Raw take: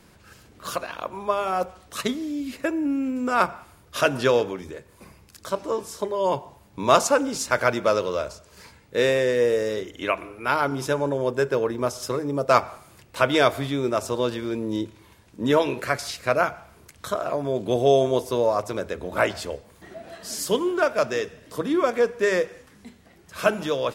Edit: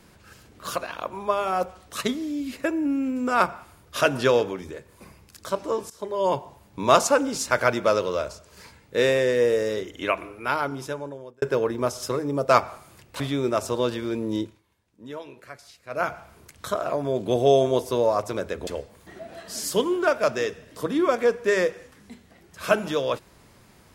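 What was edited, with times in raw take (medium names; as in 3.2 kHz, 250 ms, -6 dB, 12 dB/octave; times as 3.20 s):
5.90–6.20 s: fade in, from -17 dB
10.24–11.42 s: fade out
13.20–13.60 s: delete
14.80–16.51 s: dip -17.5 dB, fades 0.22 s
19.07–19.42 s: delete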